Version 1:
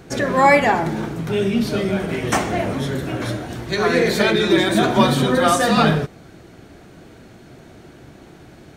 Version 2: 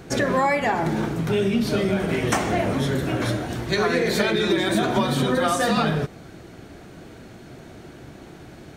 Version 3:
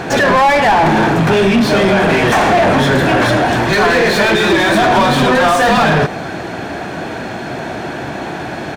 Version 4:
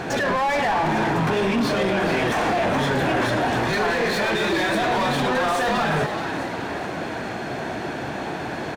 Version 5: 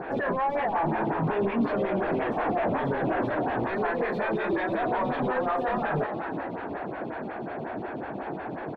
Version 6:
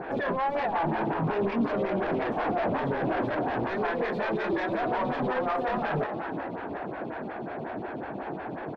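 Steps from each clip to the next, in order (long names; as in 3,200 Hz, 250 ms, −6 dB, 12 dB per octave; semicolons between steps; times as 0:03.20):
downward compressor 12 to 1, threshold −18 dBFS, peak gain reduction 10.5 dB; level +1 dB
comb filter 1.2 ms, depth 32%; mid-hump overdrive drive 29 dB, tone 1,500 Hz, clips at −7 dBFS; level +4.5 dB
brickwall limiter −10.5 dBFS, peak gain reduction 6.5 dB; echo with shifted repeats 423 ms, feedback 49%, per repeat +120 Hz, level −9 dB; level −6.5 dB
high-frequency loss of the air 500 metres; phaser with staggered stages 5.5 Hz; level −1.5 dB
phase distortion by the signal itself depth 0.097 ms; level −1 dB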